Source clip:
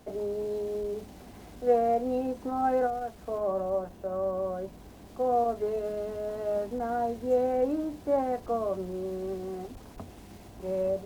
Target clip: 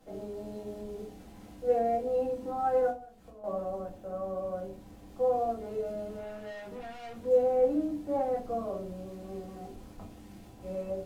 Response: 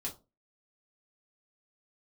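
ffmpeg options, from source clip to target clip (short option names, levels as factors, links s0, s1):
-filter_complex "[0:a]asettb=1/sr,asplit=3[s0][s1][s2];[s0]atrim=end=2.904[s3];[s1]atrim=start=2.9:end=3.44,asetpts=PTS-STARTPTS,afade=t=in:d=0.004:c=qsin,afade=t=out:st=0.536:d=0.004:c=qsin,acompressor=threshold=0.00631:ratio=10[s4];[s2]atrim=start=3.436[s5];[s3][s4]acrossfade=d=0.004:c1=hsin:c2=qsin[s6];[s6][s5]acrossfade=d=0.004:c1=qsin:c2=hsin,asettb=1/sr,asplit=3[s7][s8][s9];[s7]atrim=end=6.184[s10];[s8]atrim=start=6.18:end=7.25,asetpts=PTS-STARTPTS,afade=t=in:d=0.004:c=qsin,afade=t=out:st=1.066:d=0.004:c=qsin,asoftclip=type=hard:threshold=0.0133[s11];[s9]atrim=start=7.246[s12];[s10][s11]acrossfade=d=0.004:c1=hsin:c2=qsin[s13];[s13][s12]acrossfade=d=0.004:c1=qsin:c2=hsin[s14];[1:a]atrim=start_sample=2205,asetrate=31752,aresample=44100[s15];[s14][s15]afir=irnorm=-1:irlink=0,volume=0.473"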